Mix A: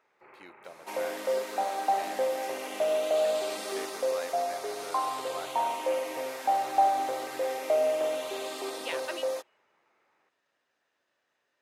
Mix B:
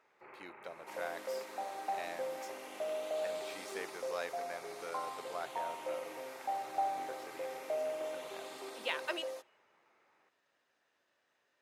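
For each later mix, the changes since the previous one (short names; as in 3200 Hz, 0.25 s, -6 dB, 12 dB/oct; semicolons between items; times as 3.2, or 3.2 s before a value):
second sound -11.0 dB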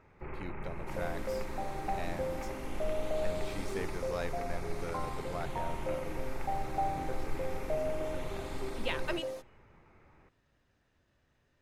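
first sound +6.0 dB; master: remove HPF 520 Hz 12 dB/oct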